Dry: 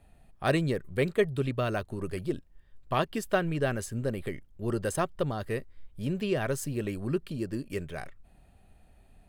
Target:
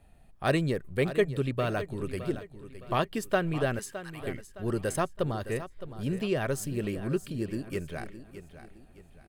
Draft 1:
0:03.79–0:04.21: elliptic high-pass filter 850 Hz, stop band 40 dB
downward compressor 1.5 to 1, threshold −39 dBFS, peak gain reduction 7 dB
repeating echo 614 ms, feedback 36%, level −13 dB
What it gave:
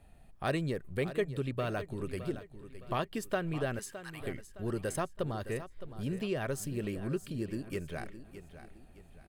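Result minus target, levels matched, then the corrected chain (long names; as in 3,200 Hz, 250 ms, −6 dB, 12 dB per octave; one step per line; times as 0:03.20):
downward compressor: peak gain reduction +7 dB
0:03.79–0:04.21: elliptic high-pass filter 850 Hz, stop band 40 dB
repeating echo 614 ms, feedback 36%, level −13 dB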